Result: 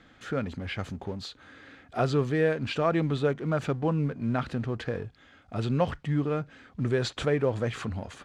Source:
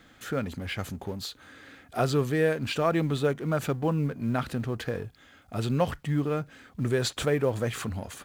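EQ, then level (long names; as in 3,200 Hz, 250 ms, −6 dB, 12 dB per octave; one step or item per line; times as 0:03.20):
high-frequency loss of the air 95 metres
0.0 dB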